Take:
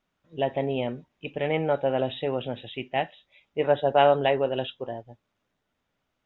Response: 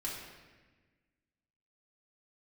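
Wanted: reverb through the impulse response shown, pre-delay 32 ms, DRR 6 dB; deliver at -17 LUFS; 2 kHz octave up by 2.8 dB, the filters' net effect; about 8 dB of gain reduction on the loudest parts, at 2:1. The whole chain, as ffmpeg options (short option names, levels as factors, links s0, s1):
-filter_complex "[0:a]equalizer=f=2000:t=o:g=3.5,acompressor=threshold=0.0398:ratio=2,asplit=2[s0][s1];[1:a]atrim=start_sample=2205,adelay=32[s2];[s1][s2]afir=irnorm=-1:irlink=0,volume=0.398[s3];[s0][s3]amix=inputs=2:normalize=0,volume=4.73"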